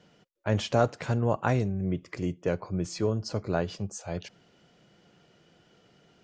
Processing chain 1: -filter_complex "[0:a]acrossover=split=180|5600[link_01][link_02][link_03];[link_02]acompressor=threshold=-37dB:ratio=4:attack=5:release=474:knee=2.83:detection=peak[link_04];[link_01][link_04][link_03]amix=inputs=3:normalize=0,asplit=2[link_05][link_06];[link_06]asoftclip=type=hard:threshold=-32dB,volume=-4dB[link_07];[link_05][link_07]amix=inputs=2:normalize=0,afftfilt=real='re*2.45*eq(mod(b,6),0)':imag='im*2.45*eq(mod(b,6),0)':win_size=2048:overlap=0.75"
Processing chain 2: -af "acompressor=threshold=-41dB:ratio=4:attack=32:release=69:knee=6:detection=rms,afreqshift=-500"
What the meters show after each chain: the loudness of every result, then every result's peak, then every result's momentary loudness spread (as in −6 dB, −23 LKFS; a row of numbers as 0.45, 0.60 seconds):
−32.5, −41.5 LKFS; −14.5, −24.5 dBFS; 16, 21 LU